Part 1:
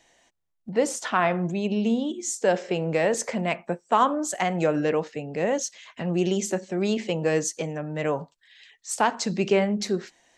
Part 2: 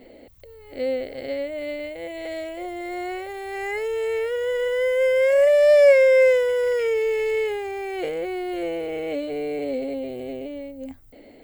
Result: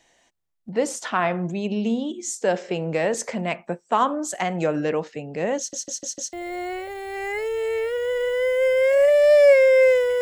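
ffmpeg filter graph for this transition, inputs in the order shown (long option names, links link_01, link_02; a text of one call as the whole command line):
ffmpeg -i cue0.wav -i cue1.wav -filter_complex "[0:a]apad=whole_dur=10.21,atrim=end=10.21,asplit=5[link_01][link_02][link_03][link_04][link_05];[link_01]atrim=end=5.732[link_06];[link_02]atrim=start=5.578:end=5.732[link_07];[link_03]atrim=start=5.578:end=5.732[link_08];[link_04]atrim=start=5.578:end=5.732[link_09];[link_05]atrim=start=5.578:end=5.732[link_10];[1:a]atrim=start=2.718:end=6.6[link_11];[link_06][link_07]acrossfade=duration=0.004:curve1=hsin:curve2=hsin[link_12];[link_12][link_08]acrossfade=duration=0.004:curve1=hsin:curve2=hsin[link_13];[link_13][link_09]acrossfade=duration=0.004:curve1=hsin:curve2=hsin[link_14];[link_14][link_10]acrossfade=duration=0.004:curve1=hsin:curve2=hsin[link_15];[link_15][link_11]acrossfade=duration=0.004:curve1=hsin:curve2=hsin" out.wav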